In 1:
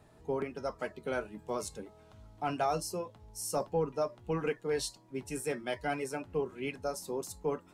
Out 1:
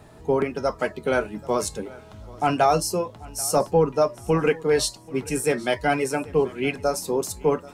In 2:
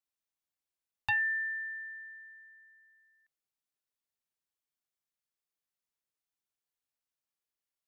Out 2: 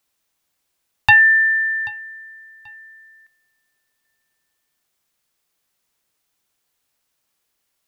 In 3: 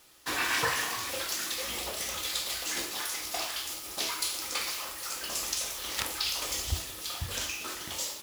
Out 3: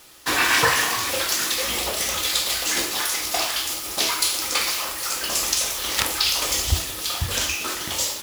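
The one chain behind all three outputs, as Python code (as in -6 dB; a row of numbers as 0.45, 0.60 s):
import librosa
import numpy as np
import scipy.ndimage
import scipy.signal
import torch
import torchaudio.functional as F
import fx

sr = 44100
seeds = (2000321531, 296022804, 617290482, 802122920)

y = fx.echo_feedback(x, sr, ms=784, feedback_pct=24, wet_db=-22)
y = y * 10.0 ** (-24 / 20.0) / np.sqrt(np.mean(np.square(y)))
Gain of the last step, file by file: +12.0, +19.0, +10.0 dB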